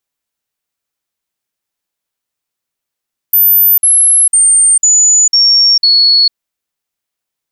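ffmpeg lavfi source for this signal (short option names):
-f lavfi -i "aevalsrc='0.596*clip(min(mod(t,0.5),0.45-mod(t,0.5))/0.005,0,1)*sin(2*PI*13900*pow(2,-floor(t/0.5)/3)*mod(t,0.5))':d=3:s=44100"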